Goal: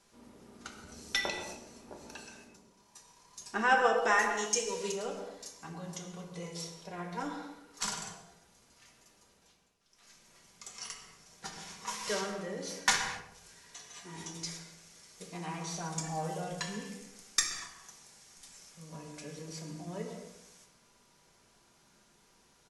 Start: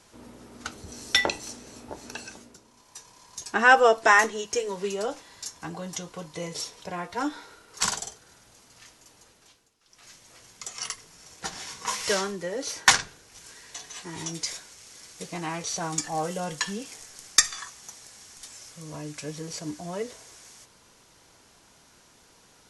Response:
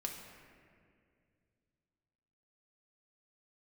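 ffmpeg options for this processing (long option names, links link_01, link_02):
-filter_complex "[0:a]asettb=1/sr,asplit=3[link_01][link_02][link_03];[link_01]atrim=end=4.374[link_04];[link_02]atrim=start=4.37:end=4.92,asetpts=PTS-STARTPTS,afade=type=in:duration=0.004:curve=qsin,afade=type=out:start_time=0.546:duration=0.004:curve=qsin,equalizer=frequency=6900:width=0.43:gain=12[link_05];[link_03]atrim=start=4.916[link_06];[link_04][link_05]acrossfade=duration=0.004:curve1=hsin:curve2=qsin[link_07];[link_07][link_06]acrossfade=duration=0.004:curve1=qsin:curve2=hsin,asplit=2[link_08][link_09];[link_09]adelay=126,lowpass=frequency=940:poles=1,volume=-9.5dB,asplit=2[link_10][link_11];[link_11]adelay=126,lowpass=frequency=940:poles=1,volume=0.43,asplit=2[link_12][link_13];[link_13]adelay=126,lowpass=frequency=940:poles=1,volume=0.43,asplit=2[link_14][link_15];[link_15]adelay=126,lowpass=frequency=940:poles=1,volume=0.43,asplit=2[link_16][link_17];[link_17]adelay=126,lowpass=frequency=940:poles=1,volume=0.43[link_18];[link_08][link_10][link_12][link_14][link_16][link_18]amix=inputs=6:normalize=0[link_19];[1:a]atrim=start_sample=2205,afade=type=out:start_time=0.32:duration=0.01,atrim=end_sample=14553[link_20];[link_19][link_20]afir=irnorm=-1:irlink=0,volume=-7.5dB"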